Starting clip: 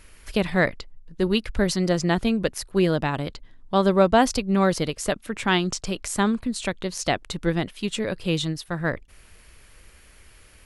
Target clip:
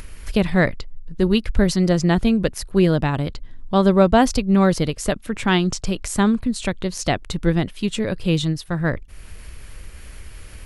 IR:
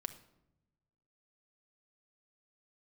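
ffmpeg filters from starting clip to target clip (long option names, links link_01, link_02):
-filter_complex "[0:a]lowshelf=frequency=210:gain=9,asplit=2[link_01][link_02];[link_02]acompressor=mode=upward:threshold=-22dB:ratio=2.5,volume=-2dB[link_03];[link_01][link_03]amix=inputs=2:normalize=0,volume=-4dB"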